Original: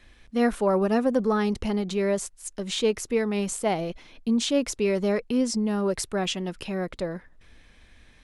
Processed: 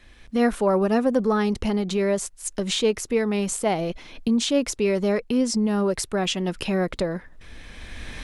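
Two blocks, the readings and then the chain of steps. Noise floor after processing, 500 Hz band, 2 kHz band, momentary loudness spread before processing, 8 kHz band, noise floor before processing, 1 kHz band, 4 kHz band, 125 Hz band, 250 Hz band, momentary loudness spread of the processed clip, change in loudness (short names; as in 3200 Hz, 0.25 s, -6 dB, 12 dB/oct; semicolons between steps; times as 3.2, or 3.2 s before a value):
-49 dBFS, +2.5 dB, +3.0 dB, 9 LU, +3.5 dB, -55 dBFS, +2.5 dB, +3.5 dB, +3.5 dB, +2.5 dB, 9 LU, +2.5 dB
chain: recorder AGC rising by 14 dB/s; gain +2 dB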